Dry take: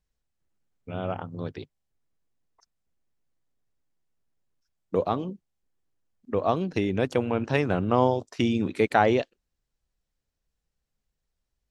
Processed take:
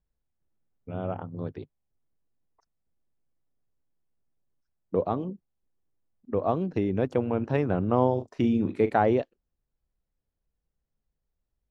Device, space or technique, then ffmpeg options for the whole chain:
through cloth: -filter_complex "[0:a]asettb=1/sr,asplit=3[link_01][link_02][link_03];[link_01]atrim=end=8.104[link_04];[link_02]atrim=start=8.1:end=8.98,asetpts=PTS-STARTPTS,afade=type=in:duration=0.004:curve=qsin,afade=type=out:start_time=0.876:duration=0.004:curve=qsin,asplit=2[link_05][link_06];[link_06]adelay=39,volume=-11dB[link_07];[link_05][link_07]amix=inputs=2:normalize=0,atrim=end_sample=38808[link_08];[link_03]atrim=start=8.976[link_09];[link_04][link_08]acrossfade=duration=0.004:curve1=hsin:curve2=qsin[link_10];[link_10][link_09]acrossfade=duration=0.004:curve1=qsin:curve2=hsin,highshelf=frequency=2000:gain=-16"

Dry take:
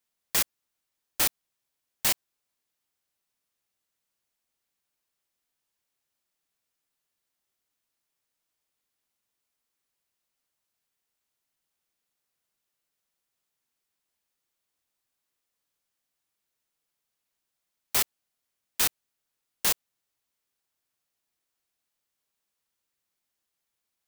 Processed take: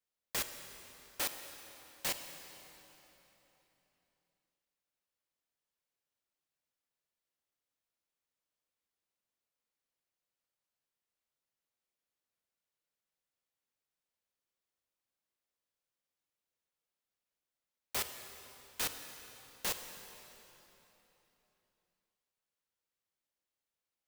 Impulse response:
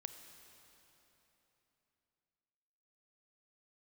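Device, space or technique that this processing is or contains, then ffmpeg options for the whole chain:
swimming-pool hall: -filter_complex "[0:a]asettb=1/sr,asplit=3[link_01][link_02][link_03];[link_01]atrim=end=1.204[link_04];[link_02]atrim=start=1.2:end=2.06,asetpts=PTS-STARTPTS,afade=type=in:duration=0.004:curve=qsin,afade=type=out:start_time=0.856:duration=0.004:curve=qsin,highpass=frequency=240:poles=1[link_05];[link_03]atrim=start=2.056[link_06];[link_04][link_05]acrossfade=duration=0.004:curve1=hsin:curve2=qsin[link_07];[link_07][link_06]acrossfade=duration=0.004:curve1=qsin:curve2=hsin,equalizer=frequency=530:width_type=o:width=0.37:gain=4.5[link_08];[1:a]atrim=start_sample=2205[link_09];[link_08][link_09]afir=irnorm=-1:irlink=0,highshelf=frequency=5600:gain=-5,volume=-3.5dB"

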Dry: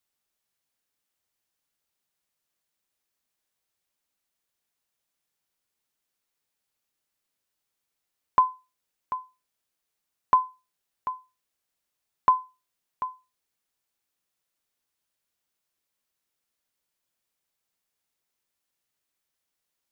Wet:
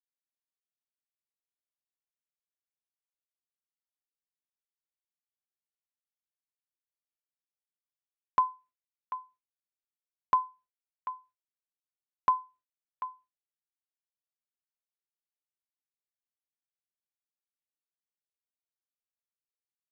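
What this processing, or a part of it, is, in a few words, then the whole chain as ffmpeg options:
hearing-loss simulation: -af "lowpass=2100,agate=range=-33dB:threshold=-49dB:ratio=3:detection=peak,volume=-5dB"

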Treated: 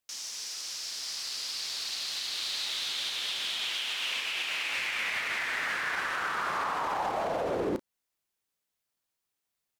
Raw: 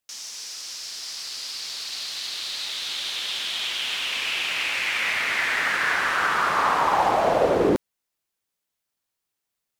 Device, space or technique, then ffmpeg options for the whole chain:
stacked limiters: -filter_complex "[0:a]asettb=1/sr,asplit=3[link_01][link_02][link_03];[link_01]atrim=end=3.704[link_04];[link_02]atrim=start=3.7:end=4.7,asetpts=PTS-STARTPTS,afade=type=in:duration=0.004:curve=qsin,afade=type=out:start_time=0.996:duration=0.004:curve=qsin,highpass=frequency=250:poles=1[link_05];[link_03]atrim=start=4.696[link_06];[link_04][link_05]acrossfade=duration=0.004:curve1=hsin:curve2=qsin[link_07];[link_07][link_06]acrossfade=duration=0.004:curve1=qsin:curve2=hsin,alimiter=limit=-15dB:level=0:latency=1:release=29,alimiter=limit=-20.5dB:level=0:latency=1:release=201,asplit=2[link_08][link_09];[link_09]adelay=34,volume=-13.5dB[link_10];[link_08][link_10]amix=inputs=2:normalize=0,volume=-2.5dB"

